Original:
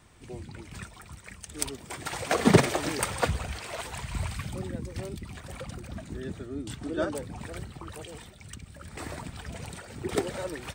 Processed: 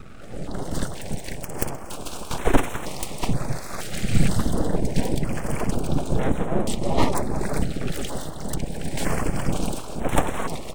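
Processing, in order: bass shelf 160 Hz +9 dB; level rider gain up to 15 dB; band noise 390–750 Hz -36 dBFS; full-wave rectifier; step-sequenced notch 2.1 Hz 990–4700 Hz; trim -1 dB

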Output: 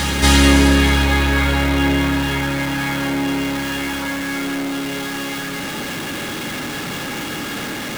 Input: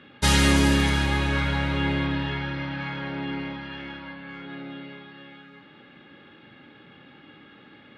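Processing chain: jump at every zero crossing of -26.5 dBFS; reverse echo 249 ms -8.5 dB; trim +5 dB

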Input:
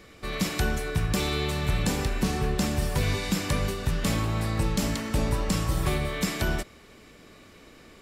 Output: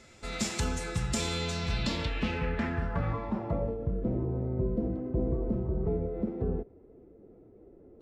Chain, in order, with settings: low-pass sweep 7.5 kHz -> 430 Hz, 1.36–3.99 s; formant-preserving pitch shift +2.5 st; trim -5 dB

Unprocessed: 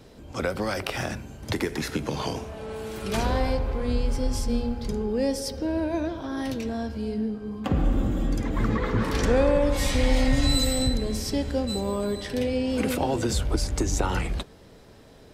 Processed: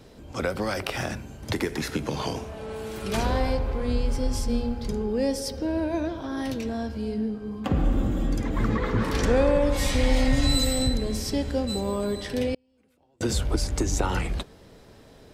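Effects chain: 12.54–13.21 s: inverted gate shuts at -19 dBFS, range -40 dB

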